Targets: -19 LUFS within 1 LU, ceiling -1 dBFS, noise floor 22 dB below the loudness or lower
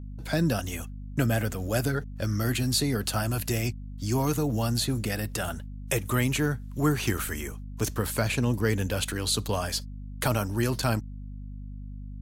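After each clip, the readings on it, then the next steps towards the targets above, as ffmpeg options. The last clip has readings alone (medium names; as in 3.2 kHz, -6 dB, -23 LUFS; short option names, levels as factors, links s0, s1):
hum 50 Hz; highest harmonic 250 Hz; hum level -36 dBFS; loudness -28.0 LUFS; peak level -12.0 dBFS; loudness target -19.0 LUFS
-> -af "bandreject=f=50:t=h:w=6,bandreject=f=100:t=h:w=6,bandreject=f=150:t=h:w=6,bandreject=f=200:t=h:w=6,bandreject=f=250:t=h:w=6"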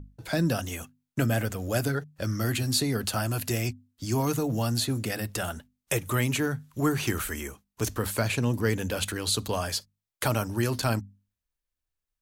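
hum not found; loudness -28.5 LUFS; peak level -12.5 dBFS; loudness target -19.0 LUFS
-> -af "volume=2.99"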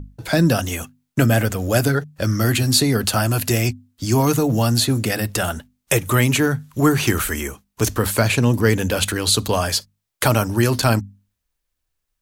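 loudness -19.0 LUFS; peak level -3.0 dBFS; noise floor -77 dBFS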